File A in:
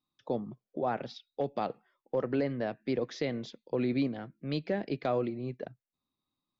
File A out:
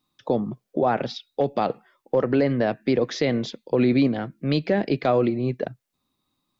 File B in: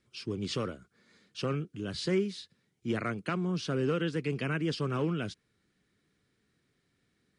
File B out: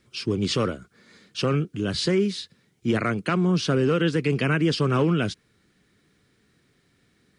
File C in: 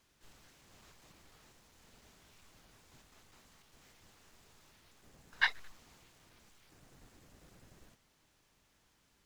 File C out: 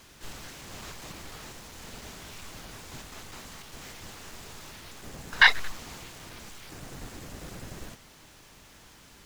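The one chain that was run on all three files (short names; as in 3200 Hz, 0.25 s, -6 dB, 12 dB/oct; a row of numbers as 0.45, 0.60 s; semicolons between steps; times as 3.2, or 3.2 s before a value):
limiter -23.5 dBFS; match loudness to -24 LUFS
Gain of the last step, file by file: +12.0, +10.5, +19.0 dB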